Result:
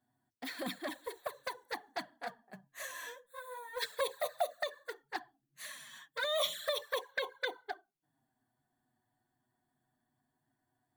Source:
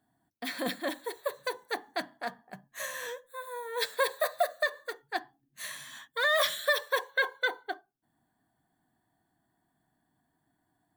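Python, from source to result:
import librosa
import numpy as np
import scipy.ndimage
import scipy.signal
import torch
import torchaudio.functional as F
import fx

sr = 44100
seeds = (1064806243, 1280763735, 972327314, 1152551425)

y = fx.env_flanger(x, sr, rest_ms=8.2, full_db=-24.5)
y = y * librosa.db_to_amplitude(-3.0)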